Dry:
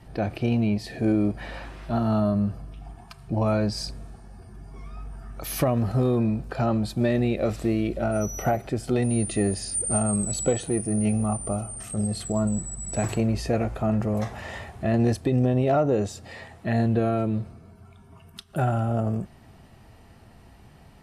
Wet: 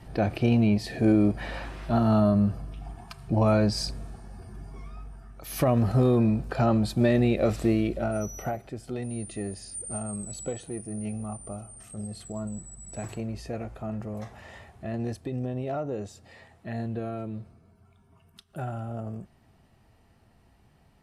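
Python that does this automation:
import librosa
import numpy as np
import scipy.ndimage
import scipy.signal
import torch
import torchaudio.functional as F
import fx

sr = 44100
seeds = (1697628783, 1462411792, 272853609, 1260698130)

y = fx.gain(x, sr, db=fx.line((4.61, 1.5), (5.42, -9.0), (5.7, 1.0), (7.7, 1.0), (8.72, -10.0)))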